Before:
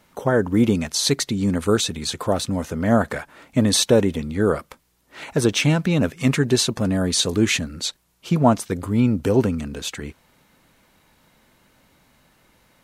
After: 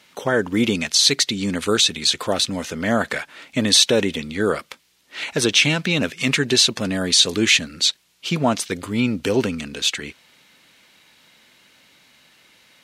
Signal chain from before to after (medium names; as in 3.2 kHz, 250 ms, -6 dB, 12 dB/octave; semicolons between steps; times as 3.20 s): frequency weighting D; in parallel at +2 dB: peak limiter -7.5 dBFS, peak gain reduction 11 dB; on the sum: trim -7.5 dB